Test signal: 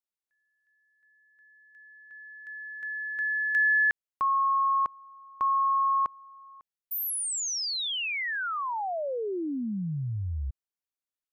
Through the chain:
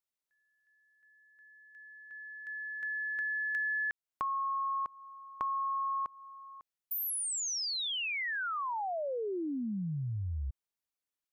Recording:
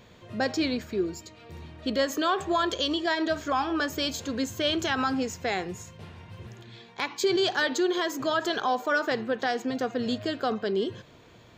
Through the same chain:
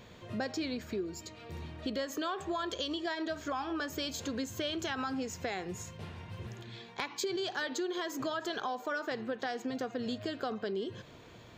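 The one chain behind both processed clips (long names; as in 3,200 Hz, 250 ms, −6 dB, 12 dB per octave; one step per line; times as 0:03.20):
downward compressor 4 to 1, threshold −34 dBFS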